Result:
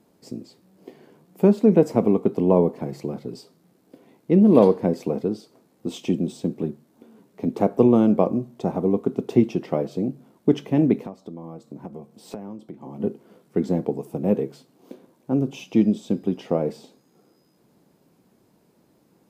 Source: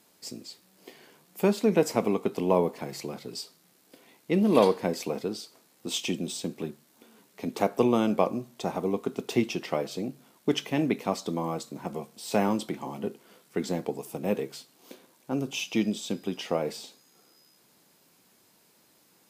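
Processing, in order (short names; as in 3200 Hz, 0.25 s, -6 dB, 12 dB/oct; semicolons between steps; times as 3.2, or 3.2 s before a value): tilt shelf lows +10 dB; 11.05–13 compressor 12:1, threshold -33 dBFS, peak gain reduction 20 dB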